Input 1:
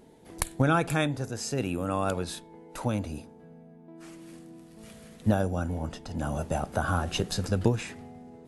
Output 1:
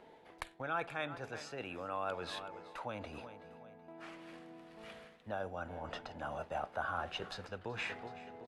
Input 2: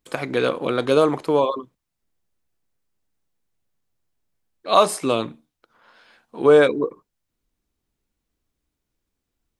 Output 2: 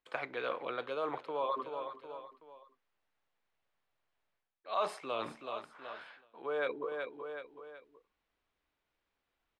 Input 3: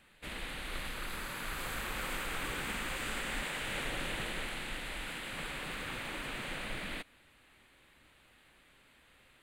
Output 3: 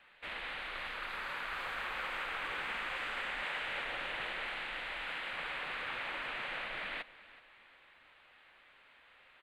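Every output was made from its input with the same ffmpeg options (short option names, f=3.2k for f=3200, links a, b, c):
-filter_complex "[0:a]aecho=1:1:376|752|1128:0.1|0.038|0.0144,areverse,acompressor=threshold=-36dB:ratio=4,areverse,acrossover=split=520 3700:gain=0.158 1 0.0794[a][b][c];[a][b][c]amix=inputs=3:normalize=0,volume=4dB"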